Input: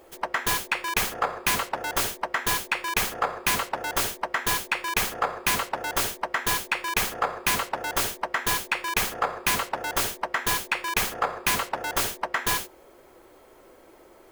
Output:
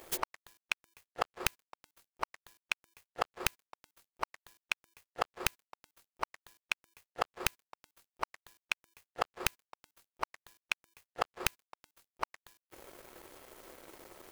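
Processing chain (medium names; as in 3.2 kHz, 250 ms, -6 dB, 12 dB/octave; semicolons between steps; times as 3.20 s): inverted gate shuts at -21 dBFS, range -36 dB; treble shelf 2.5 kHz +6 dB; crossover distortion -52.5 dBFS; trim +5 dB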